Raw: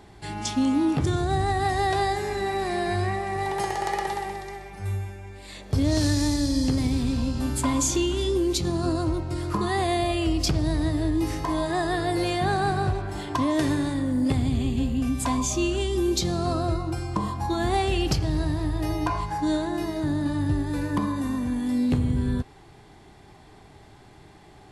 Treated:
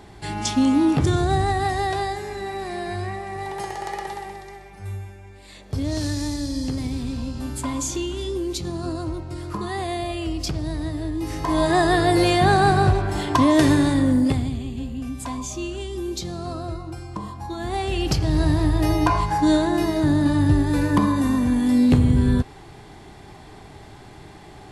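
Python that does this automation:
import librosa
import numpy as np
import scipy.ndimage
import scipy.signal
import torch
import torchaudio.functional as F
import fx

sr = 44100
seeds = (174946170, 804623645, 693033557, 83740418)

y = fx.gain(x, sr, db=fx.line((1.26, 4.5), (2.25, -3.0), (11.2, -3.0), (11.65, 7.5), (14.11, 7.5), (14.62, -5.0), (17.57, -5.0), (18.49, 7.0)))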